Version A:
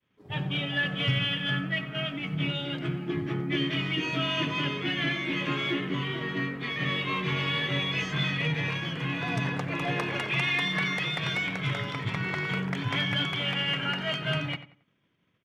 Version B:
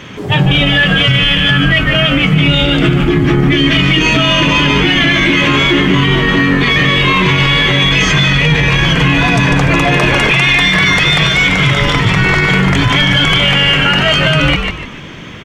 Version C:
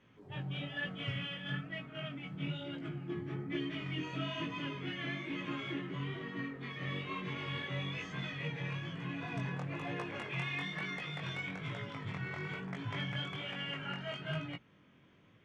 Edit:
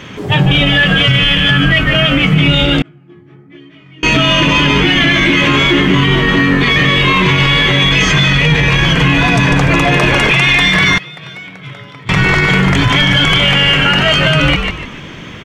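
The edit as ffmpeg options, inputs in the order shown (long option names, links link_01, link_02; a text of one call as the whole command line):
ffmpeg -i take0.wav -i take1.wav -i take2.wav -filter_complex "[1:a]asplit=3[link_01][link_02][link_03];[link_01]atrim=end=2.822[link_04];[2:a]atrim=start=2.818:end=4.032[link_05];[link_02]atrim=start=4.028:end=10.982[link_06];[0:a]atrim=start=10.978:end=12.092[link_07];[link_03]atrim=start=12.088[link_08];[link_04][link_05]acrossfade=duration=0.004:curve1=hsin:curve2=hsin[link_09];[link_09][link_06]acrossfade=duration=0.004:curve1=hsin:curve2=hsin[link_10];[link_10][link_07]acrossfade=duration=0.004:curve1=hsin:curve2=hsin[link_11];[link_11][link_08]acrossfade=duration=0.004:curve1=hsin:curve2=hsin" out.wav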